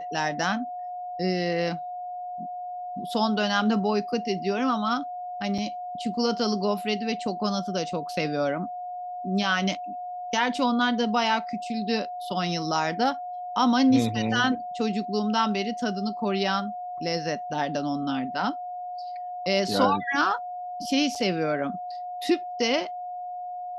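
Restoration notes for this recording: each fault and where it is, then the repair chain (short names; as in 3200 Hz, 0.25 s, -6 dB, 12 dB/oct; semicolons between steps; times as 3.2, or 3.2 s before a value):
tone 720 Hz -32 dBFS
5.58 gap 4.7 ms
21.15–21.16 gap 5.6 ms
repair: notch 720 Hz, Q 30; interpolate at 5.58, 4.7 ms; interpolate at 21.15, 5.6 ms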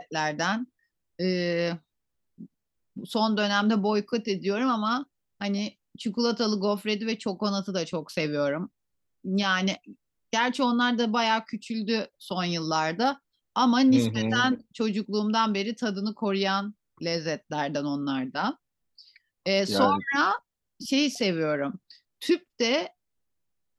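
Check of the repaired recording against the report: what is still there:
none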